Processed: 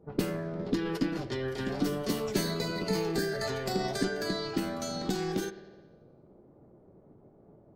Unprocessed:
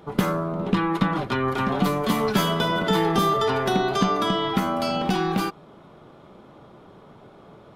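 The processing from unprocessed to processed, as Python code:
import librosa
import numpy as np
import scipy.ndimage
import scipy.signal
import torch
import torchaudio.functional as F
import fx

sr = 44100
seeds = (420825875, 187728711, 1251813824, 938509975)

y = fx.env_lowpass(x, sr, base_hz=470.0, full_db=-19.5)
y = fx.peak_eq(y, sr, hz=1000.0, db=-13.5, octaves=2.2)
y = fx.rev_spring(y, sr, rt60_s=1.2, pass_ms=(51,), chirp_ms=40, drr_db=13.0)
y = fx.formant_shift(y, sr, semitones=5)
y = F.gain(torch.from_numpy(y), -4.5).numpy()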